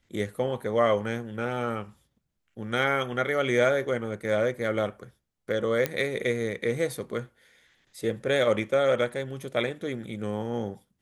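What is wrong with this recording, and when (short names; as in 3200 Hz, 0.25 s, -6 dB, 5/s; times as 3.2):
5.86 pop -11 dBFS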